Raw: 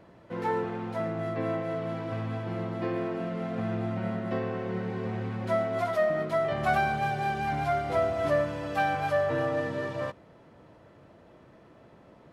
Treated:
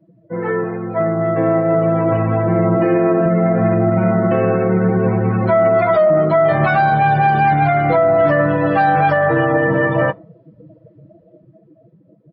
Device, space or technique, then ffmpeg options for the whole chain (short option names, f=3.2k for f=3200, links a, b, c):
low-bitrate web radio: -filter_complex "[0:a]asettb=1/sr,asplit=3[a][b][c];[a]atrim=end=2.764[d];[b]atrim=start=2.76:end=3.26,asetpts=PTS-STARTPTS,afade=t=in:d=0.004:c=qsin,afade=t=out:st=0.496:d=0.004:c=qsin,highpass=140[e];[c]atrim=start=3.256[f];[d][e]acrossfade=d=0.004:c1=hsin:c2=qsin[g];[g][f]acrossfade=d=0.004:c1=qsin:c2=hsin,afftdn=nr=32:nf=-43,aecho=1:1:6.2:0.92,dynaudnorm=f=730:g=5:m=9.5dB,alimiter=limit=-14dB:level=0:latency=1:release=59,volume=8dB" -ar 12000 -c:a libmp3lame -b:a 32k